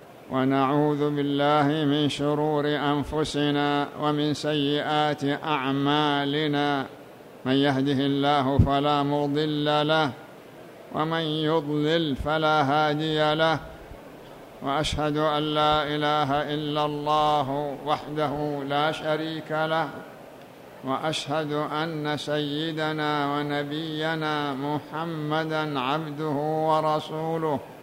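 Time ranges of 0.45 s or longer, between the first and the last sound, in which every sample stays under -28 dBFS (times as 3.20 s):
6.86–7.45 s
10.10–10.92 s
13.58–14.62 s
19.98–20.85 s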